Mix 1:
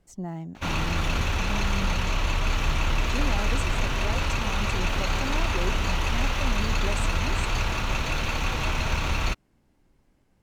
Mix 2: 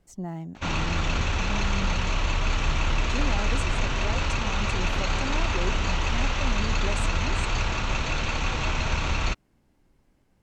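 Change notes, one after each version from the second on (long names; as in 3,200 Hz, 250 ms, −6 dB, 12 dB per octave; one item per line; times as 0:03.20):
background: add linear-phase brick-wall low-pass 8,200 Hz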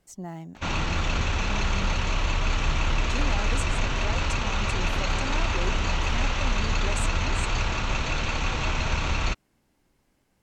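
speech: add spectral tilt +1.5 dB per octave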